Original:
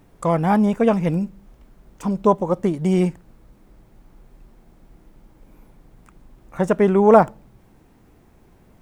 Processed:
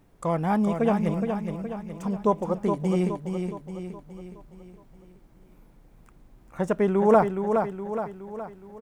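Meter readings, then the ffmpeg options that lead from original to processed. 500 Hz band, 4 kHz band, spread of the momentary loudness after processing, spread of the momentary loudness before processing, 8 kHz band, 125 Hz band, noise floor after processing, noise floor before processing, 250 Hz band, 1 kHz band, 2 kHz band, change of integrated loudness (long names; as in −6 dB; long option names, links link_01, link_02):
−5.0 dB, −5.0 dB, 17 LU, 12 LU, can't be measured, −5.0 dB, −56 dBFS, −54 dBFS, −5.0 dB, −5.0 dB, −5.0 dB, −7.0 dB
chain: -af "aecho=1:1:418|836|1254|1672|2090|2508:0.501|0.251|0.125|0.0626|0.0313|0.0157,volume=-6.5dB"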